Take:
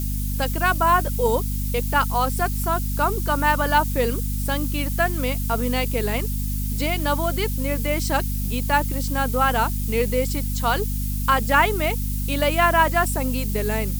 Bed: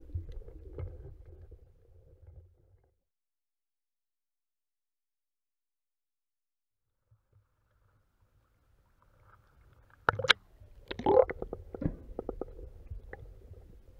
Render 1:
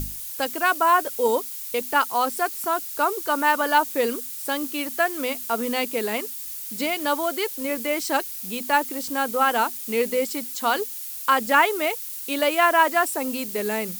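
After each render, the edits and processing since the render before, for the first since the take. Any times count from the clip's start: hum notches 50/100/150/200/250 Hz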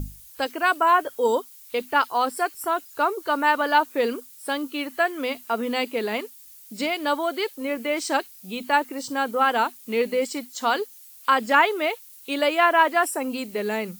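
noise print and reduce 13 dB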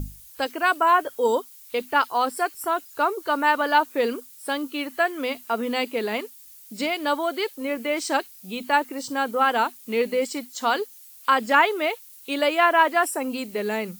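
no audible change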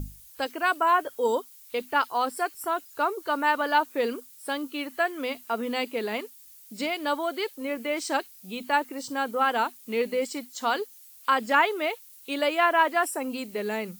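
trim -3.5 dB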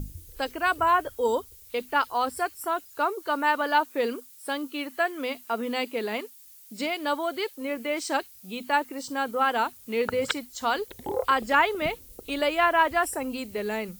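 add bed -6 dB

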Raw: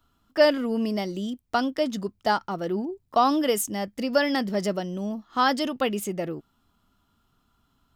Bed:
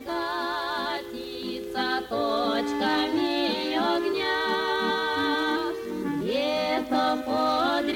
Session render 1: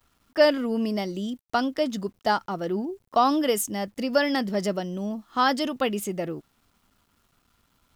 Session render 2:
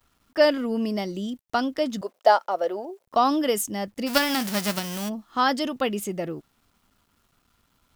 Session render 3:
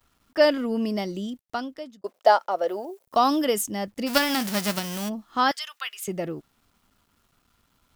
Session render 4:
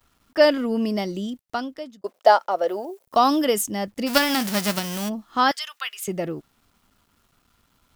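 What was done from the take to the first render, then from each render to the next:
bit crusher 11-bit
2.01–3.07 s: resonant high-pass 580 Hz, resonance Q 3.6; 4.06–5.08 s: formants flattened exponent 0.3
1.13–2.04 s: fade out linear; 2.68–3.45 s: treble shelf 7 kHz +10.5 dB; 5.51–6.08 s: high-pass 1.3 kHz 24 dB/octave
trim +2.5 dB

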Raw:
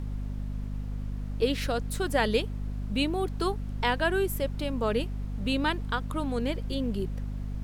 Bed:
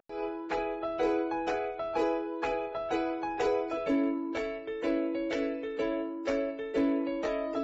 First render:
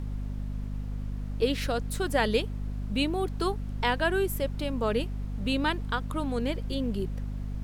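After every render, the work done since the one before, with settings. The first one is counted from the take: no audible change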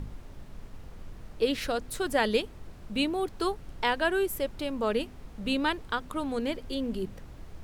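de-hum 50 Hz, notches 5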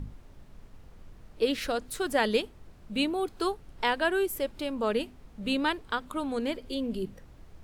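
noise print and reduce 6 dB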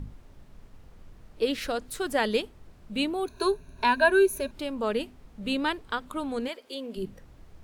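3.26–4.51 s: rippled EQ curve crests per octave 1.5, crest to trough 16 dB; 6.47–6.96 s: high-pass 660 Hz -> 310 Hz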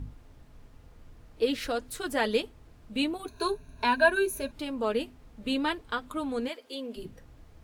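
comb of notches 190 Hz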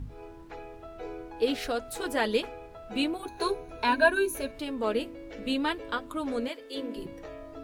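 add bed -11.5 dB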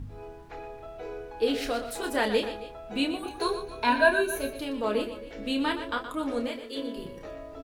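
doubling 29 ms -7 dB; multi-tap echo 120/268 ms -10.5/-17.5 dB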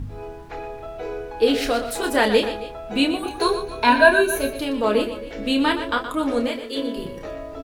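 trim +8 dB; peak limiter -2 dBFS, peak gain reduction 0.5 dB

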